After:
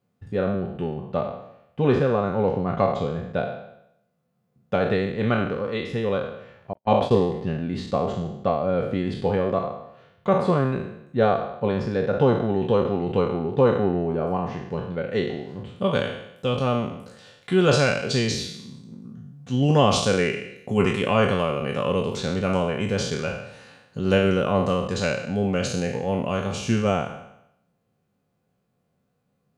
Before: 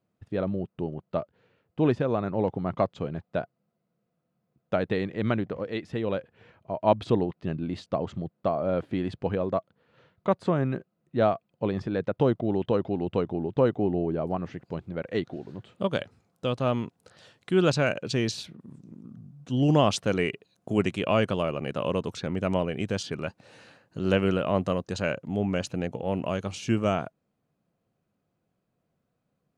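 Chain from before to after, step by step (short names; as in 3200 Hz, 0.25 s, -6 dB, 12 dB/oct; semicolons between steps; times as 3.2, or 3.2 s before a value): spectral trails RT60 0.79 s; notch comb 320 Hz; 6.73–7.24 gate -26 dBFS, range -55 dB; gain +3.5 dB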